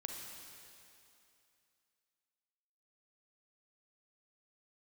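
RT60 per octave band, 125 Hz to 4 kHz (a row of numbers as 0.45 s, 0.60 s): 2.5 s, 2.6 s, 2.7 s, 2.7 s, 2.7 s, 2.6 s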